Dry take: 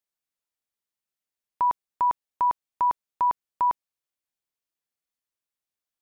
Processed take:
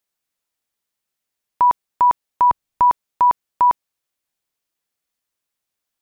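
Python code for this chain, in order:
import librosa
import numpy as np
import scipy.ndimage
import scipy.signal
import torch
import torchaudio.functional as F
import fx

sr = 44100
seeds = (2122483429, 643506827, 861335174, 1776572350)

y = fx.low_shelf(x, sr, hz=160.0, db=11.0, at=(2.49, 2.89), fade=0.02)
y = y * 10.0 ** (8.5 / 20.0)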